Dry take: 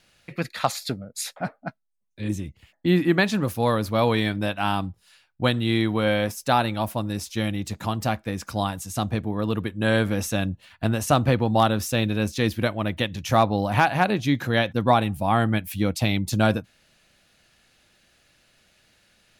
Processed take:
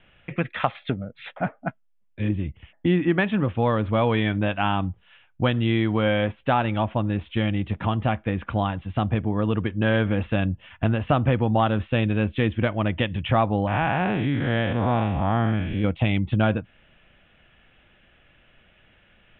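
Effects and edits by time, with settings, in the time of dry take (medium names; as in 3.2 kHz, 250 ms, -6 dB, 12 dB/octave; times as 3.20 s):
13.67–15.84 s: spectral blur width 185 ms
whole clip: steep low-pass 3.4 kHz 96 dB/octave; bass shelf 64 Hz +9 dB; compression 2:1, threshold -26 dBFS; trim +4.5 dB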